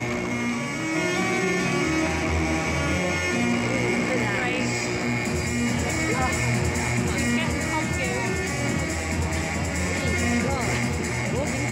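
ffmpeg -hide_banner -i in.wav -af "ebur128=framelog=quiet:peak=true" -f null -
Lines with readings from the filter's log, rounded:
Integrated loudness:
  I:         -24.2 LUFS
  Threshold: -34.2 LUFS
Loudness range:
  LRA:         1.5 LU
  Threshold: -44.1 LUFS
  LRA low:   -24.9 LUFS
  LRA high:  -23.4 LUFS
True peak:
  Peak:      -12.7 dBFS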